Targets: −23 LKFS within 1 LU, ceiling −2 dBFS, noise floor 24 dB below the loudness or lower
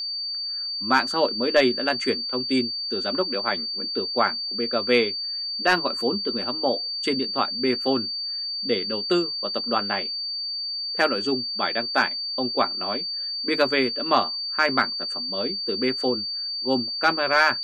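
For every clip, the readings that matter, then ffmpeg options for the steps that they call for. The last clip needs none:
interfering tone 4,600 Hz; level of the tone −27 dBFS; integrated loudness −23.5 LKFS; sample peak −7.0 dBFS; target loudness −23.0 LKFS
→ -af "bandreject=frequency=4600:width=30"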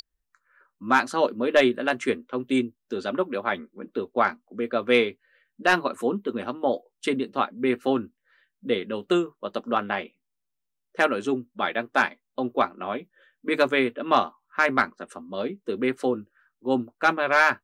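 interfering tone none found; integrated loudness −25.5 LKFS; sample peak −8.0 dBFS; target loudness −23.0 LKFS
→ -af "volume=2.5dB"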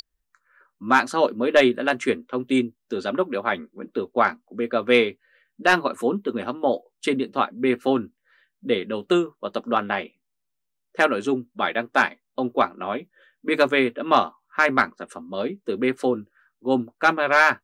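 integrated loudness −23.0 LKFS; sample peak −5.5 dBFS; background noise floor −78 dBFS

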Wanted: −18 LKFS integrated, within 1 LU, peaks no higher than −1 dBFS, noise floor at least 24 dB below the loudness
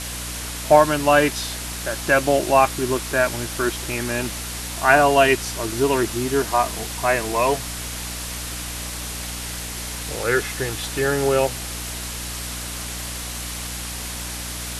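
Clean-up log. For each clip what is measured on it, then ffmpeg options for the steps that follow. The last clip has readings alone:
mains hum 60 Hz; hum harmonics up to 300 Hz; level of the hum −33 dBFS; background noise floor −31 dBFS; target noise floor −46 dBFS; integrated loudness −22.0 LKFS; sample peak −1.5 dBFS; target loudness −18.0 LKFS
→ -af "bandreject=frequency=60:width_type=h:width=6,bandreject=frequency=120:width_type=h:width=6,bandreject=frequency=180:width_type=h:width=6,bandreject=frequency=240:width_type=h:width=6,bandreject=frequency=300:width_type=h:width=6"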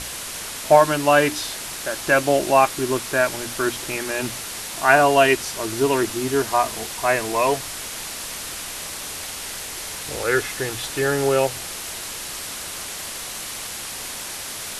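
mains hum none found; background noise floor −33 dBFS; target noise floor −46 dBFS
→ -af "afftdn=noise_reduction=13:noise_floor=-33"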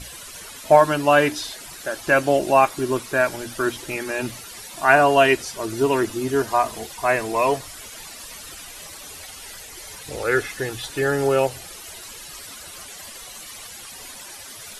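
background noise floor −39 dBFS; target noise floor −45 dBFS
→ -af "afftdn=noise_reduction=6:noise_floor=-39"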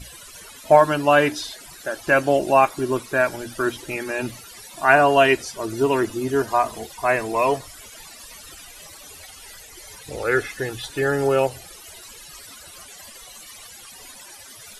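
background noise floor −43 dBFS; target noise floor −45 dBFS
→ -af "afftdn=noise_reduction=6:noise_floor=-43"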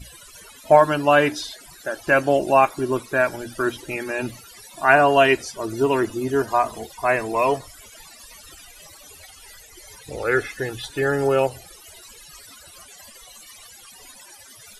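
background noise floor −46 dBFS; integrated loudness −20.5 LKFS; sample peak −1.5 dBFS; target loudness −18.0 LKFS
→ -af "volume=2.5dB,alimiter=limit=-1dB:level=0:latency=1"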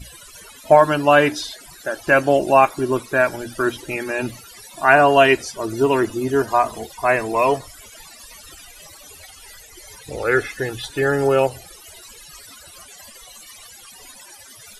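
integrated loudness −18.5 LKFS; sample peak −1.0 dBFS; background noise floor −44 dBFS

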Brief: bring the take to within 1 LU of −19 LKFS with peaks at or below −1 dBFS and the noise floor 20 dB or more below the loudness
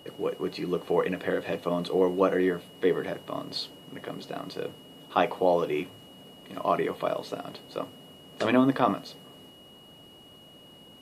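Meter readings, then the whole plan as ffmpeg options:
interfering tone 2,900 Hz; level of the tone −52 dBFS; integrated loudness −28.5 LKFS; sample peak −8.0 dBFS; target loudness −19.0 LKFS
→ -af "bandreject=frequency=2900:width=30"
-af "volume=9.5dB,alimiter=limit=-1dB:level=0:latency=1"

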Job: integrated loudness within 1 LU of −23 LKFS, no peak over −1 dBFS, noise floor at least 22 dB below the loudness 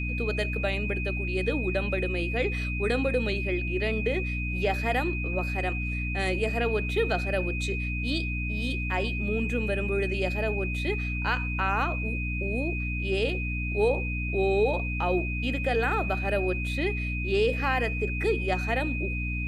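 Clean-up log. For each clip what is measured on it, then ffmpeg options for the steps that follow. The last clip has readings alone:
mains hum 60 Hz; hum harmonics up to 300 Hz; level of the hum −29 dBFS; interfering tone 2,500 Hz; level of the tone −33 dBFS; integrated loudness −28.0 LKFS; sample peak −12.5 dBFS; target loudness −23.0 LKFS
→ -af "bandreject=frequency=60:width_type=h:width=6,bandreject=frequency=120:width_type=h:width=6,bandreject=frequency=180:width_type=h:width=6,bandreject=frequency=240:width_type=h:width=6,bandreject=frequency=300:width_type=h:width=6"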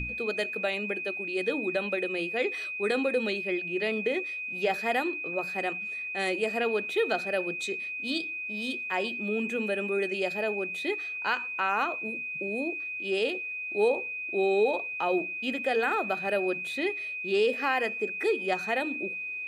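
mains hum none found; interfering tone 2,500 Hz; level of the tone −33 dBFS
→ -af "bandreject=frequency=2500:width=30"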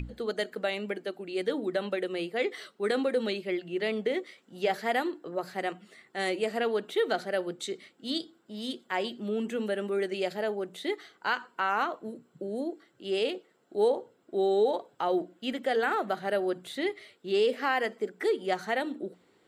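interfering tone none found; integrated loudness −31.0 LKFS; sample peak −14.5 dBFS; target loudness −23.0 LKFS
→ -af "volume=8dB"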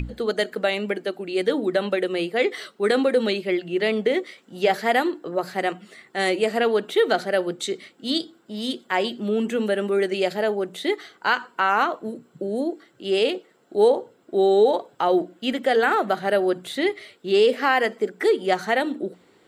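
integrated loudness −23.0 LKFS; sample peak −6.5 dBFS; background noise floor −59 dBFS

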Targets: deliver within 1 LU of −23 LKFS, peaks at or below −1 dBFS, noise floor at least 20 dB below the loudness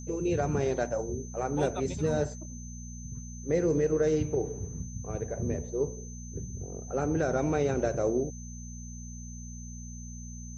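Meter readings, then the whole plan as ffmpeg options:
mains hum 60 Hz; hum harmonics up to 240 Hz; level of the hum −40 dBFS; interfering tone 6,200 Hz; level of the tone −47 dBFS; integrated loudness −31.0 LKFS; sample peak −15.0 dBFS; target loudness −23.0 LKFS
→ -af "bandreject=frequency=60:width_type=h:width=4,bandreject=frequency=120:width_type=h:width=4,bandreject=frequency=180:width_type=h:width=4,bandreject=frequency=240:width_type=h:width=4"
-af "bandreject=frequency=6200:width=30"
-af "volume=8dB"

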